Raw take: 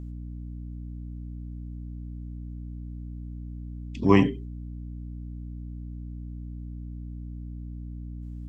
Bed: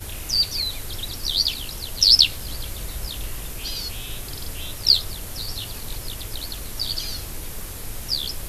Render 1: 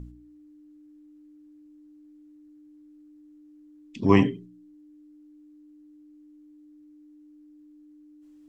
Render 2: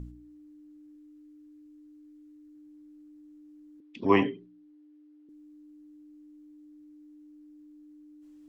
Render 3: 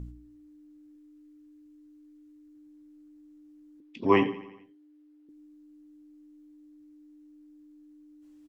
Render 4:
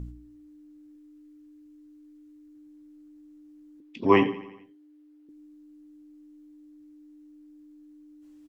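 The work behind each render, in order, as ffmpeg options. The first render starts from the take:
-af "bandreject=f=60:t=h:w=4,bandreject=f=120:t=h:w=4,bandreject=f=180:t=h:w=4,bandreject=f=240:t=h:w=4"
-filter_complex "[0:a]asettb=1/sr,asplit=3[a][b][c];[a]atrim=end=0.954[d];[b]atrim=start=0.95:end=2.55,asetpts=PTS-STARTPTS,afade=t=in:d=0.004:c=qsin,afade=t=out:st=1.596:d=0.004:c=qsin,equalizer=f=650:w=2.1:g=-8.5[e];[c]atrim=start=2.546[f];[d][e]acrossfade=d=0.004:c1=hsin:c2=qsin[g];[g][f]acrossfade=d=0.004:c1=qsin:c2=hsin,asettb=1/sr,asplit=3[h][i][j];[h]atrim=end=3.804[k];[i]atrim=start=3.8:end=5.29,asetpts=PTS-STARTPTS,afade=t=in:d=0.004:c=qsin,afade=t=out:st=1.486:d=0.004:c=qsin,acrossover=split=290 4300:gain=0.2 1 0.0794[l][m][n];[l][m][n]amix=inputs=3:normalize=0[o];[j]atrim=start=5.286[p];[k][o]acrossfade=d=0.004:c1=hsin:c2=qsin[q];[q][p]acrossfade=d=0.004:c1=qsin:c2=hsin"
-filter_complex "[0:a]asplit=2[a][b];[b]adelay=18,volume=-13dB[c];[a][c]amix=inputs=2:normalize=0,aecho=1:1:86|172|258|344|430:0.133|0.0787|0.0464|0.0274|0.0162"
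-af "volume=2.5dB"

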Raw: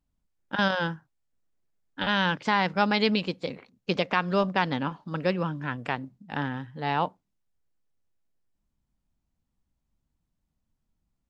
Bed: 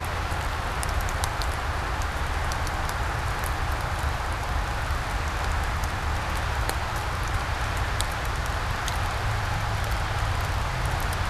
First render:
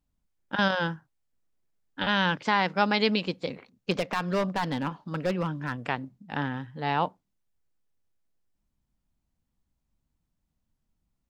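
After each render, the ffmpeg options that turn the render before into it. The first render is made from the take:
-filter_complex "[0:a]asettb=1/sr,asplit=3[a][b][c];[a]atrim=end=2.434[d];[b]atrim=start=2.43:end=3.24,asetpts=PTS-STARTPTS,afade=t=in:d=0.004:c=qsin,afade=t=out:st=0.806:d=0.004:c=qsin,highpass=170[e];[c]atrim=start=3.236[f];[d][e]acrossfade=d=0.004:c1=hsin:c2=qsin[g];[g][f]acrossfade=d=0.004:c1=qsin:c2=hsin,asettb=1/sr,asplit=3[h][i][j];[h]atrim=end=3.914[k];[i]atrim=start=3.91:end=5.83,asetpts=PTS-STARTPTS,afade=t=in:d=0.004:c=qsin,afade=t=out:st=1.916:d=0.004:c=qsin,asoftclip=type=hard:threshold=-21dB[l];[j]atrim=start=5.826[m];[k][l]acrossfade=d=0.004:c1=hsin:c2=qsin[n];[n][m]acrossfade=d=0.004:c1=qsin:c2=hsin"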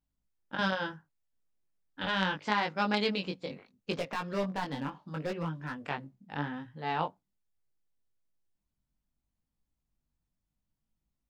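-af "flanger=delay=18.5:depth=3:speed=0.73,aeval=exprs='0.316*(cos(1*acos(clip(val(0)/0.316,-1,1)))-cos(1*PI/2))+0.0316*(cos(3*acos(clip(val(0)/0.316,-1,1)))-cos(3*PI/2))':c=same"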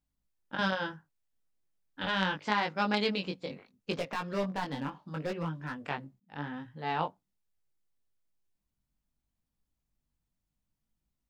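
-filter_complex "[0:a]asplit=2[a][b];[a]atrim=end=6.2,asetpts=PTS-STARTPTS,afade=t=out:st=6.196:d=0.004:c=hsin[c];[b]atrim=start=6.2,asetpts=PTS-STARTPTS,afade=t=in:d=0.48:c=qsin[d];[c][d]concat=n=2:v=0:a=1"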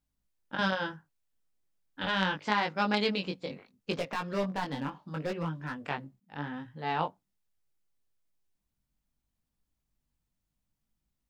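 -af "volume=1dB"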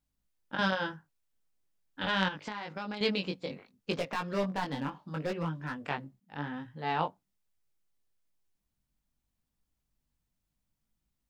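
-filter_complex "[0:a]asettb=1/sr,asplit=3[a][b][c];[a]atrim=end=2.284[d];[b]atrim=start=2.28:end=3.01,asetpts=PTS-STARTPTS,afade=t=in:d=0.004:c=qsin,afade=t=out:st=0.726:d=0.004:c=qsin,acompressor=threshold=-33dB:ratio=16:attack=3.2:release=140:knee=1:detection=peak[e];[c]atrim=start=3.006[f];[d][e]acrossfade=d=0.004:c1=hsin:c2=qsin[g];[g][f]acrossfade=d=0.004:c1=qsin:c2=hsin"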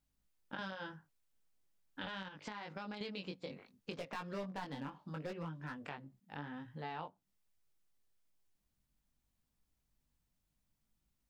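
-af "alimiter=limit=-21dB:level=0:latency=1:release=268,acompressor=threshold=-45dB:ratio=2.5"

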